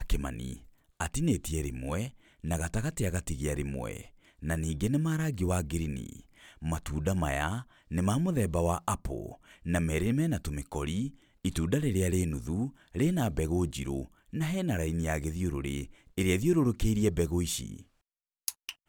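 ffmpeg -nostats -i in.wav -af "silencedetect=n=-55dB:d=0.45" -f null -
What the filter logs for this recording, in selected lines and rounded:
silence_start: 17.86
silence_end: 18.48 | silence_duration: 0.62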